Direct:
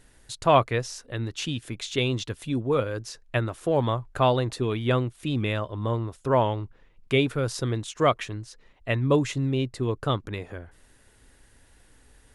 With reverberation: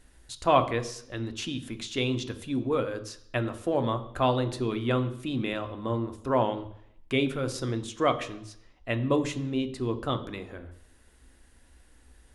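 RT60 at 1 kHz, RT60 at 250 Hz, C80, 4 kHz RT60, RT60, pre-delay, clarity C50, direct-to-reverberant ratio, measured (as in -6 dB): 0.70 s, 0.70 s, 16.5 dB, 0.70 s, 0.70 s, 3 ms, 13.5 dB, 8.0 dB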